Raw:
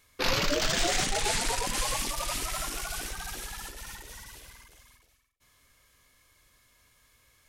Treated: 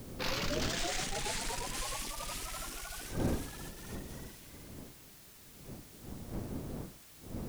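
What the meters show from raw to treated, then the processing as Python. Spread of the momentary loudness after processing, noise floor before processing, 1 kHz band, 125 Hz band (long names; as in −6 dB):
16 LU, −65 dBFS, −8.0 dB, 0.0 dB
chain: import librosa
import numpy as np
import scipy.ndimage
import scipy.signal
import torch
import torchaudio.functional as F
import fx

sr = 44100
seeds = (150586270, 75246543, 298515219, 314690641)

y = fx.dmg_wind(x, sr, seeds[0], corner_hz=280.0, level_db=-35.0)
y = fx.quant_dither(y, sr, seeds[1], bits=8, dither='triangular')
y = y * 10.0 ** (-8.5 / 20.0)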